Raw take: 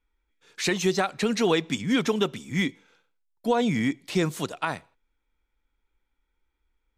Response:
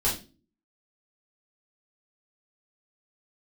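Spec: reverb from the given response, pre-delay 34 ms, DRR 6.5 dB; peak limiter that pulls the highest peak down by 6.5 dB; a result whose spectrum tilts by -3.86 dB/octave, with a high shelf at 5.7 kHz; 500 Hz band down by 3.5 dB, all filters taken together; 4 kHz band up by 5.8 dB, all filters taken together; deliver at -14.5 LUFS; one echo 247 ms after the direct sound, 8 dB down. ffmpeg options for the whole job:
-filter_complex "[0:a]equalizer=f=500:t=o:g=-4.5,equalizer=f=4000:t=o:g=5.5,highshelf=f=5700:g=5,alimiter=limit=0.15:level=0:latency=1,aecho=1:1:247:0.398,asplit=2[s0][s1];[1:a]atrim=start_sample=2205,adelay=34[s2];[s1][s2]afir=irnorm=-1:irlink=0,volume=0.15[s3];[s0][s3]amix=inputs=2:normalize=0,volume=3.98"

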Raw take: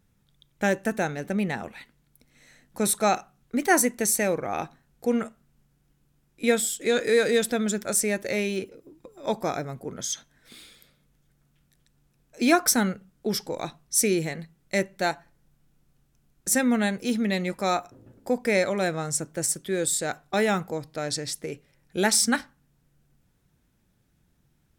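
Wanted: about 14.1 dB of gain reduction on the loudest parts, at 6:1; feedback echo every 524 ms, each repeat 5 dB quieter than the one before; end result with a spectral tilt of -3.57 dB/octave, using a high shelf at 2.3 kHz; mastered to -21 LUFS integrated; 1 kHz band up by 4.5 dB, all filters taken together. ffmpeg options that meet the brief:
-af "equalizer=f=1000:t=o:g=5.5,highshelf=f=2300:g=6.5,acompressor=threshold=0.0447:ratio=6,aecho=1:1:524|1048|1572|2096|2620|3144|3668:0.562|0.315|0.176|0.0988|0.0553|0.031|0.0173,volume=2.99"

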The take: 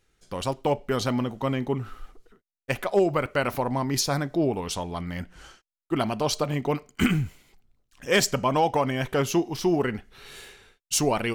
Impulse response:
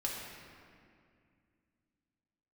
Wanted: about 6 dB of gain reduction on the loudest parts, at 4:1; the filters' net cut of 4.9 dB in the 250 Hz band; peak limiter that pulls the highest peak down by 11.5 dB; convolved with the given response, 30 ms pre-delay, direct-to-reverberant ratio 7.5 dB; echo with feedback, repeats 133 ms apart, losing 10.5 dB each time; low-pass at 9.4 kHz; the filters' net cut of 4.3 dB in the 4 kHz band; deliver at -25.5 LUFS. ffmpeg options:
-filter_complex "[0:a]lowpass=9400,equalizer=f=250:t=o:g=-7,equalizer=f=4000:t=o:g=-6,acompressor=threshold=0.0501:ratio=4,alimiter=level_in=1.26:limit=0.0631:level=0:latency=1,volume=0.794,aecho=1:1:133|266|399:0.299|0.0896|0.0269,asplit=2[s0][s1];[1:a]atrim=start_sample=2205,adelay=30[s2];[s1][s2]afir=irnorm=-1:irlink=0,volume=0.299[s3];[s0][s3]amix=inputs=2:normalize=0,volume=3.16"

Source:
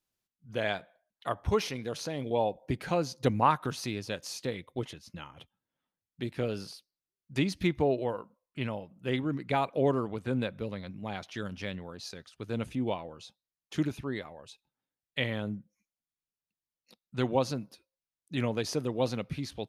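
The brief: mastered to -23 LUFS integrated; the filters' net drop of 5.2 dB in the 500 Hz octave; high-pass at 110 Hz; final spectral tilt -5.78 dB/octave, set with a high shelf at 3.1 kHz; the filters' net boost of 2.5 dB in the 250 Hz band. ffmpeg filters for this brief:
-af "highpass=110,equalizer=f=250:t=o:g=5.5,equalizer=f=500:t=o:g=-8,highshelf=f=3100:g=-6.5,volume=3.55"

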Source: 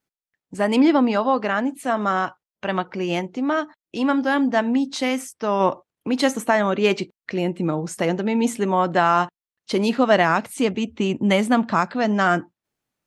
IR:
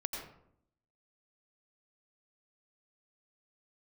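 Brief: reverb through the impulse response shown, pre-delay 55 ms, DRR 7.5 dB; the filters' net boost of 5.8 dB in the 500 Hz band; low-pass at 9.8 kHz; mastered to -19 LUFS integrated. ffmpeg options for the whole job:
-filter_complex "[0:a]lowpass=9800,equalizer=f=500:t=o:g=7.5,asplit=2[s0][s1];[1:a]atrim=start_sample=2205,adelay=55[s2];[s1][s2]afir=irnorm=-1:irlink=0,volume=0.355[s3];[s0][s3]amix=inputs=2:normalize=0,volume=0.841"

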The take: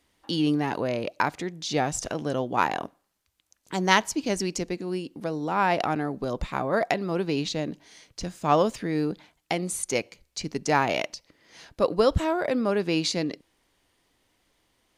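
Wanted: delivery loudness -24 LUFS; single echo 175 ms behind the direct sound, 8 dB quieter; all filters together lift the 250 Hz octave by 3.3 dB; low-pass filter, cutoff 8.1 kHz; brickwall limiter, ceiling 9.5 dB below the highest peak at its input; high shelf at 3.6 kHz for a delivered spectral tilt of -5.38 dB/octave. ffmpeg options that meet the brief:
-af "lowpass=8100,equalizer=f=250:t=o:g=4.5,highshelf=f=3600:g=-6.5,alimiter=limit=0.158:level=0:latency=1,aecho=1:1:175:0.398,volume=1.5"

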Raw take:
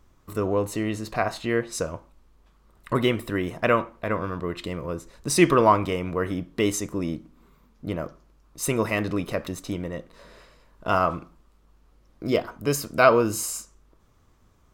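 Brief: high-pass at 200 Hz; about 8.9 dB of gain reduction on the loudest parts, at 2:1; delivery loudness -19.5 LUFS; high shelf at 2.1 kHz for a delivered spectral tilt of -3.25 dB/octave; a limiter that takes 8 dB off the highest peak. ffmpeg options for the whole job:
-af "highpass=200,highshelf=f=2100:g=4,acompressor=threshold=0.0447:ratio=2,volume=3.98,alimiter=limit=0.531:level=0:latency=1"

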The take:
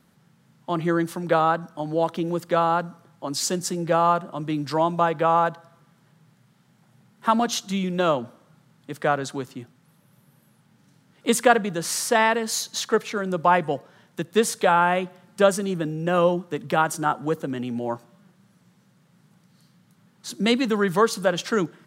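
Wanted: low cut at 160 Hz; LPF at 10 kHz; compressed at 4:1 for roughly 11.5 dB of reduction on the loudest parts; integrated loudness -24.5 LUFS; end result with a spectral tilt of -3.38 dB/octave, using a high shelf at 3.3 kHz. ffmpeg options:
-af "highpass=160,lowpass=10000,highshelf=f=3300:g=6,acompressor=threshold=0.0562:ratio=4,volume=1.78"

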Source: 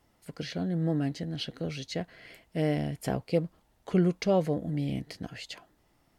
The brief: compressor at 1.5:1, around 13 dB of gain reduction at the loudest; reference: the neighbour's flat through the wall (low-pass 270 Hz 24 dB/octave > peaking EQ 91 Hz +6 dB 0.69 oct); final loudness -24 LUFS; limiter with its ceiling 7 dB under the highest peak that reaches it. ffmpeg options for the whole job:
-af "acompressor=threshold=0.00126:ratio=1.5,alimiter=level_in=3.35:limit=0.0631:level=0:latency=1,volume=0.299,lowpass=f=270:w=0.5412,lowpass=f=270:w=1.3066,equalizer=f=91:t=o:w=0.69:g=6,volume=13.3"

